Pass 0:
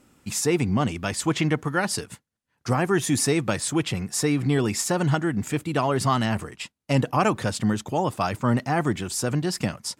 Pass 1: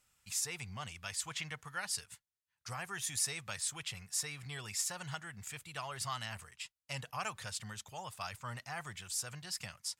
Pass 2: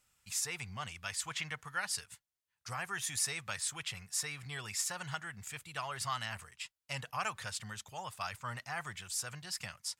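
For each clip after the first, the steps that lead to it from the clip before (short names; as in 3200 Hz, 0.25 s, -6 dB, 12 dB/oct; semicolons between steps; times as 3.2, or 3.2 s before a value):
passive tone stack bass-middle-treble 10-0-10; gain -7.5 dB
dynamic EQ 1500 Hz, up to +4 dB, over -50 dBFS, Q 0.72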